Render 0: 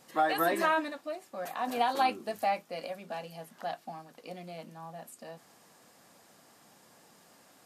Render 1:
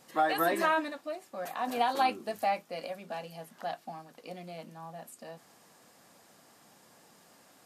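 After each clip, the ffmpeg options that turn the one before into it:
-af anull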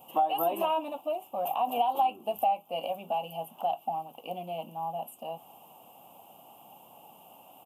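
-af "firequalizer=gain_entry='entry(460,0);entry(810,13);entry(1800,-26);entry(2800,11);entry(4200,-19);entry(14000,13)':delay=0.05:min_phase=1,acompressor=threshold=0.0398:ratio=3,volume=1.19"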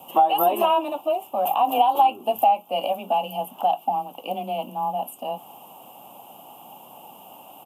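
-af "afreqshift=16,volume=2.66"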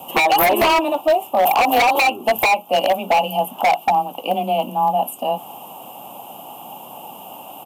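-af "aeval=exprs='0.133*(abs(mod(val(0)/0.133+3,4)-2)-1)':c=same,volume=2.66"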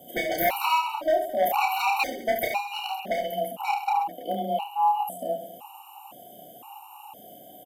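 -filter_complex "[0:a]asplit=2[s0][s1];[s1]aecho=0:1:30|72|130.8|213.1|328.4:0.631|0.398|0.251|0.158|0.1[s2];[s0][s2]amix=inputs=2:normalize=0,afftfilt=real='re*gt(sin(2*PI*0.98*pts/sr)*(1-2*mod(floor(b*sr/1024/750),2)),0)':imag='im*gt(sin(2*PI*0.98*pts/sr)*(1-2*mod(floor(b*sr/1024/750),2)),0)':win_size=1024:overlap=0.75,volume=0.376"

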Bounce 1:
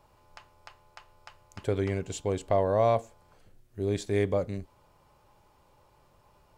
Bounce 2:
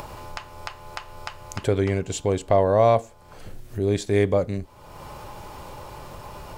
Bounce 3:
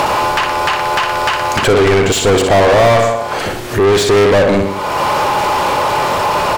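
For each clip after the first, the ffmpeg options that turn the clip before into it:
-af "acompressor=mode=upward:threshold=0.0316:ratio=2.5,volume=2.11"
-filter_complex "[0:a]asplit=2[s0][s1];[s1]aecho=0:1:61|122|183|244|305:0.282|0.138|0.0677|0.0332|0.0162[s2];[s0][s2]amix=inputs=2:normalize=0,asplit=2[s3][s4];[s4]highpass=f=720:p=1,volume=63.1,asoftclip=type=tanh:threshold=0.501[s5];[s3][s5]amix=inputs=2:normalize=0,lowpass=f=3100:p=1,volume=0.501,volume=1.41"

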